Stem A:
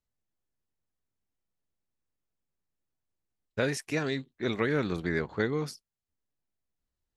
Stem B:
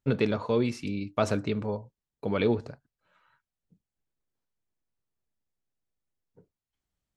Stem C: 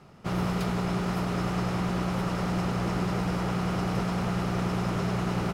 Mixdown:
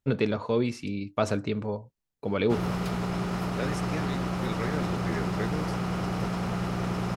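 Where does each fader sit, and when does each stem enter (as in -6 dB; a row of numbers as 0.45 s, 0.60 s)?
-6.0 dB, 0.0 dB, -1.5 dB; 0.00 s, 0.00 s, 2.25 s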